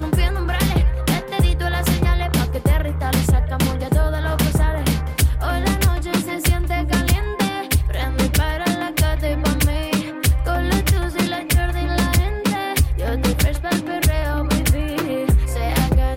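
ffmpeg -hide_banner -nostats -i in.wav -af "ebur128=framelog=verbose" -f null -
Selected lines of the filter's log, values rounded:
Integrated loudness:
  I:         -19.8 LUFS
  Threshold: -29.8 LUFS
Loudness range:
  LRA:         0.7 LU
  Threshold: -39.8 LUFS
  LRA low:   -20.2 LUFS
  LRA high:  -19.5 LUFS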